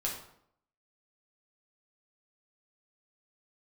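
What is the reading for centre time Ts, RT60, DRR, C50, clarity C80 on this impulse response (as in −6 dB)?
32 ms, 0.70 s, −3.0 dB, 5.0 dB, 8.5 dB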